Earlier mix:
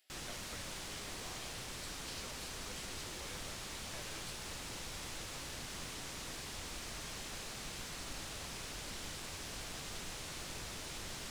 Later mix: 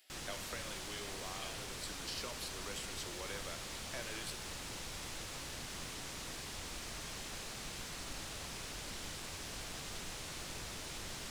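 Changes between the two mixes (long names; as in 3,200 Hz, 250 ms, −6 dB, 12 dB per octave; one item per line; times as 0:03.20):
speech +4.0 dB
reverb: on, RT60 1.5 s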